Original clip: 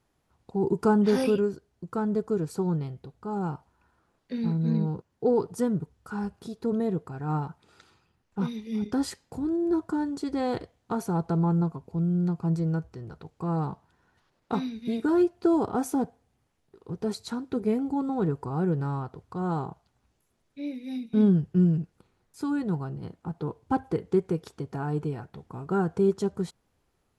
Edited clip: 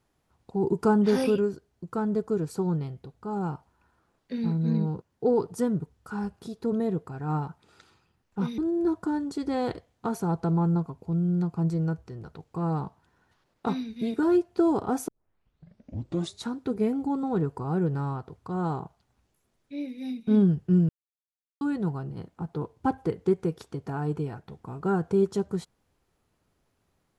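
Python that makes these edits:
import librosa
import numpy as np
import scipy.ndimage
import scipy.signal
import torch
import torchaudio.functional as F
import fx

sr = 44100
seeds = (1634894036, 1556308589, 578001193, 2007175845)

y = fx.edit(x, sr, fx.cut(start_s=8.58, length_s=0.86),
    fx.tape_start(start_s=15.94, length_s=1.38),
    fx.silence(start_s=21.75, length_s=0.72), tone=tone)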